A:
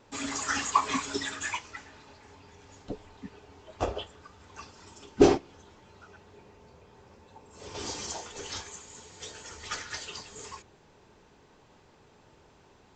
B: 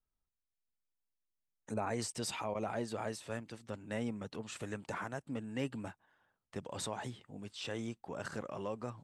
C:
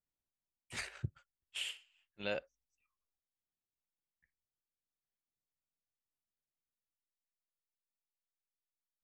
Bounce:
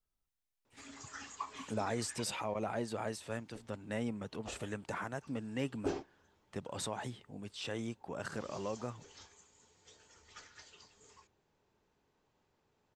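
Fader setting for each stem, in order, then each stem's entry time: -18.0, +0.5, -18.0 dB; 0.65, 0.00, 0.00 s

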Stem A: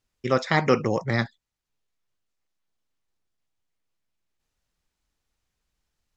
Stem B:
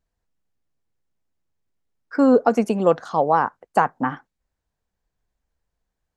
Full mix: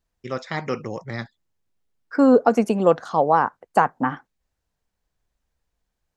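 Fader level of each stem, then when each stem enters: -6.5, +0.5 dB; 0.00, 0.00 s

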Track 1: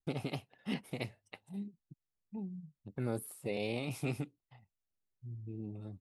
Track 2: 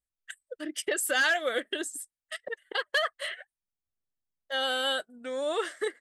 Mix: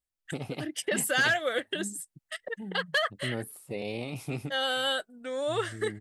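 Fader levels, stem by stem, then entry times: +1.5, 0.0 dB; 0.25, 0.00 s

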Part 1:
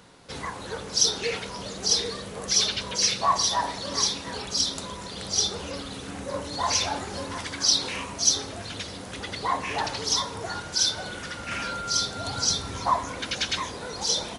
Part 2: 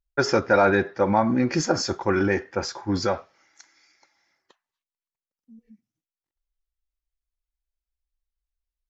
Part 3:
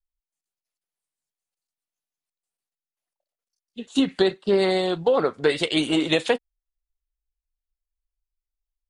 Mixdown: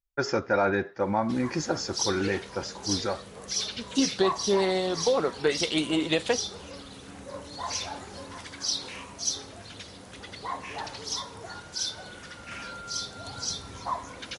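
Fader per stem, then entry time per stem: -8.0, -6.0, -4.5 dB; 1.00, 0.00, 0.00 s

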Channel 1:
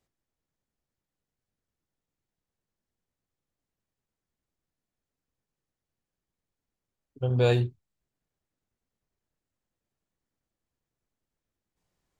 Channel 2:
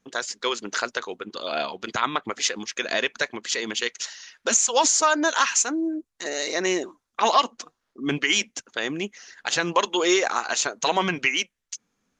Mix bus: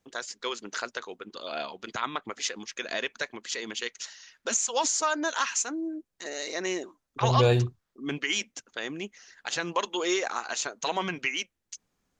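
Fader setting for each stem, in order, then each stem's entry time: +1.0, -7.0 dB; 0.00, 0.00 s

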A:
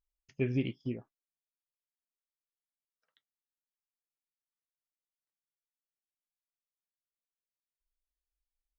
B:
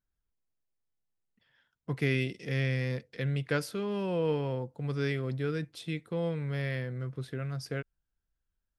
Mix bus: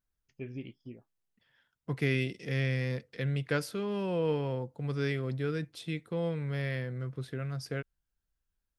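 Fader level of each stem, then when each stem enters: -10.0, -0.5 dB; 0.00, 0.00 s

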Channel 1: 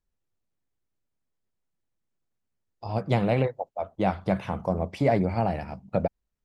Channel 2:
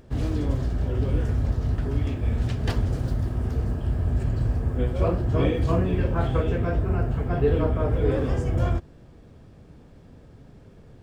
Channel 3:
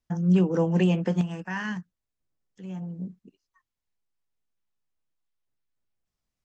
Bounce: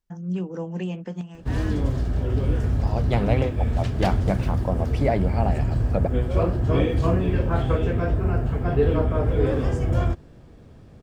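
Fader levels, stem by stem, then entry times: 0.0, +1.5, -7.5 dB; 0.00, 1.35, 0.00 s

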